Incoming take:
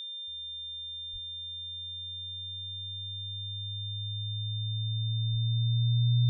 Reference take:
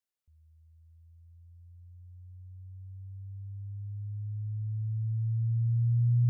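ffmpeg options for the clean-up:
-filter_complex "[0:a]adeclick=t=4,bandreject=f=3600:w=30,asplit=3[s0][s1][s2];[s0]afade=t=out:st=1.12:d=0.02[s3];[s1]highpass=f=140:w=0.5412,highpass=f=140:w=1.3066,afade=t=in:st=1.12:d=0.02,afade=t=out:st=1.24:d=0.02[s4];[s2]afade=t=in:st=1.24:d=0.02[s5];[s3][s4][s5]amix=inputs=3:normalize=0,asplit=3[s6][s7][s8];[s6]afade=t=out:st=5.31:d=0.02[s9];[s7]highpass=f=140:w=0.5412,highpass=f=140:w=1.3066,afade=t=in:st=5.31:d=0.02,afade=t=out:st=5.43:d=0.02[s10];[s8]afade=t=in:st=5.43:d=0.02[s11];[s9][s10][s11]amix=inputs=3:normalize=0"

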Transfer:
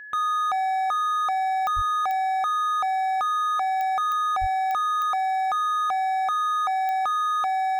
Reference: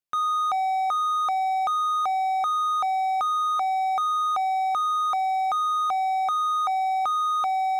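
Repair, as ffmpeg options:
-filter_complex "[0:a]adeclick=t=4,bandreject=f=1700:w=30,asplit=3[s0][s1][s2];[s0]afade=t=out:st=1.75:d=0.02[s3];[s1]highpass=f=140:w=0.5412,highpass=f=140:w=1.3066,afade=t=in:st=1.75:d=0.02,afade=t=out:st=1.87:d=0.02[s4];[s2]afade=t=in:st=1.87:d=0.02[s5];[s3][s4][s5]amix=inputs=3:normalize=0,asplit=3[s6][s7][s8];[s6]afade=t=out:st=4.4:d=0.02[s9];[s7]highpass=f=140:w=0.5412,highpass=f=140:w=1.3066,afade=t=in:st=4.4:d=0.02,afade=t=out:st=4.52:d=0.02[s10];[s8]afade=t=in:st=4.52:d=0.02[s11];[s9][s10][s11]amix=inputs=3:normalize=0"

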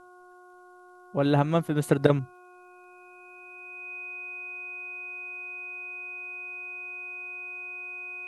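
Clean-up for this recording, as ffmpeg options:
-af "adeclick=t=4,bandreject=f=361.1:t=h:w=4,bandreject=f=722.2:t=h:w=4,bandreject=f=1083.3:t=h:w=4,bandreject=f=1444.4:t=h:w=4,bandreject=f=2500:w=30,agate=range=0.0891:threshold=0.00631"

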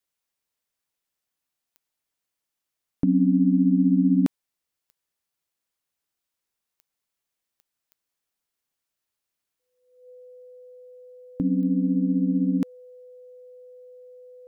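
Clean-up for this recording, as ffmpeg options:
-af "adeclick=t=4,bandreject=f=500:w=30"

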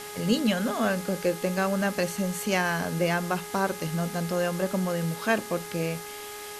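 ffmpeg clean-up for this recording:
-af "bandreject=f=415.7:t=h:w=4,bandreject=f=831.4:t=h:w=4,bandreject=f=1247.1:t=h:w=4,bandreject=f=1662.8:t=h:w=4,bandreject=f=2078.5:t=h:w=4,afwtdn=0.0089"

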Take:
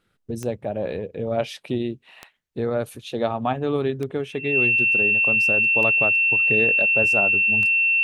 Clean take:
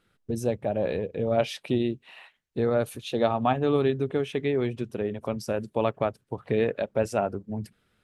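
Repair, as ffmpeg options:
-af "adeclick=t=4,bandreject=f=2700:w=30"

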